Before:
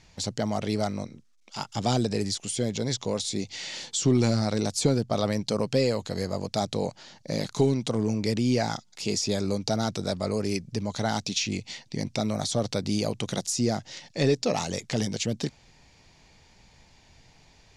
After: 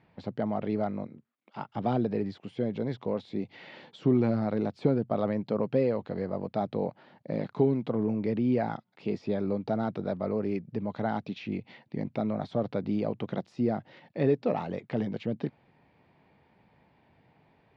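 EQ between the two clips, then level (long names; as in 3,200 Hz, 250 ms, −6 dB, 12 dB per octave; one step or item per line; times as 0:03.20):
high-pass filter 150 Hz 12 dB per octave
low-pass filter 1,900 Hz 6 dB per octave
high-frequency loss of the air 430 metres
0.0 dB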